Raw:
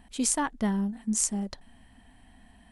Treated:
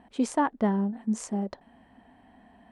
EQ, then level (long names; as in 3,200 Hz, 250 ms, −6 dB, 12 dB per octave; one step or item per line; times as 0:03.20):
resonant band-pass 530 Hz, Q 0.74
+7.0 dB